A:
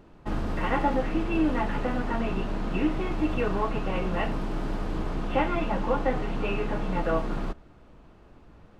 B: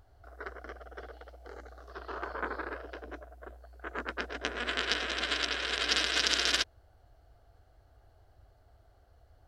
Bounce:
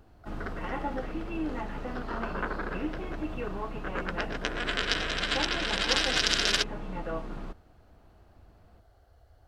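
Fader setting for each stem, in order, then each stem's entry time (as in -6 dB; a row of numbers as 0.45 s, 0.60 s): -8.5 dB, +2.0 dB; 0.00 s, 0.00 s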